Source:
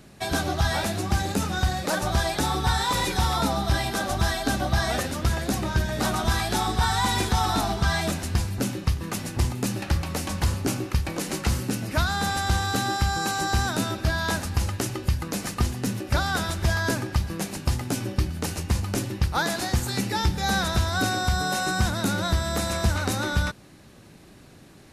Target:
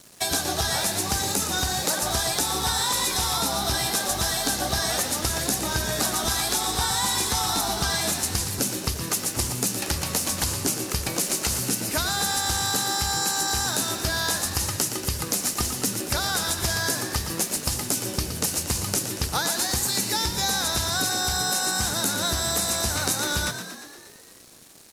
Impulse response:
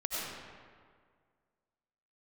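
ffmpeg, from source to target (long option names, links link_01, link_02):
-filter_complex "[0:a]aeval=exprs='sgn(val(0))*max(abs(val(0))-0.00282,0)':channel_layout=same,bass=frequency=250:gain=-6,treble=frequency=4000:gain=13,acompressor=threshold=-25dB:ratio=6,asplit=2[link_01][link_02];[link_02]asplit=8[link_03][link_04][link_05][link_06][link_07][link_08][link_09][link_10];[link_03]adelay=117,afreqshift=56,volume=-9.5dB[link_11];[link_04]adelay=234,afreqshift=112,volume=-13.4dB[link_12];[link_05]adelay=351,afreqshift=168,volume=-17.3dB[link_13];[link_06]adelay=468,afreqshift=224,volume=-21.1dB[link_14];[link_07]adelay=585,afreqshift=280,volume=-25dB[link_15];[link_08]adelay=702,afreqshift=336,volume=-28.9dB[link_16];[link_09]adelay=819,afreqshift=392,volume=-32.8dB[link_17];[link_10]adelay=936,afreqshift=448,volume=-36.6dB[link_18];[link_11][link_12][link_13][link_14][link_15][link_16][link_17][link_18]amix=inputs=8:normalize=0[link_19];[link_01][link_19]amix=inputs=2:normalize=0,volume=3dB"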